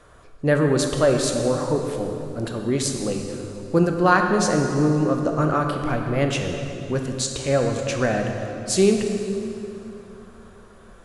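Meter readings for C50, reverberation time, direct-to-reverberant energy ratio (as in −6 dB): 4.0 dB, 3.0 s, 3.0 dB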